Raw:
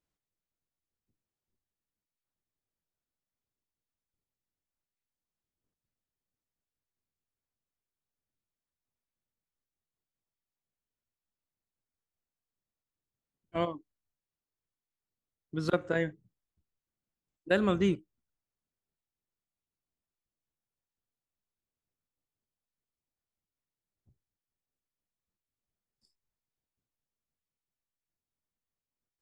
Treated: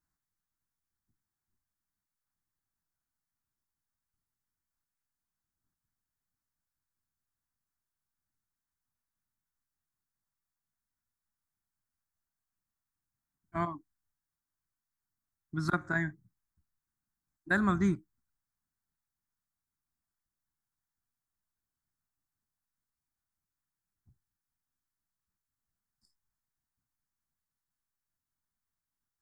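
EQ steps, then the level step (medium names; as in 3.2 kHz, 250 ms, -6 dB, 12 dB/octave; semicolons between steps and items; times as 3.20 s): peaking EQ 1.6 kHz +3.5 dB 0.49 oct; static phaser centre 1.2 kHz, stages 4; +3.0 dB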